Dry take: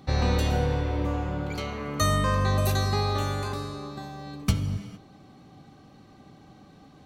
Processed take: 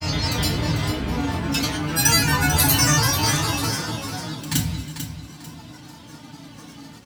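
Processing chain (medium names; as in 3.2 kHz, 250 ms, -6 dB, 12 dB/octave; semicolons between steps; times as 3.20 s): granulator, pitch spread up and down by 7 st; in parallel at -2 dB: peak limiter -20 dBFS, peak gain reduction 7.5 dB; on the sum: resonant low shelf 290 Hz +8.5 dB, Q 1.5; level rider gain up to 6 dB; tilt EQ +4 dB/octave; on a send: feedback delay 444 ms, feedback 29%, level -9.5 dB; on the sum: FDN reverb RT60 0.31 s, low-frequency decay 1.3×, high-frequency decay 0.9×, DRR -1 dB; trim -4 dB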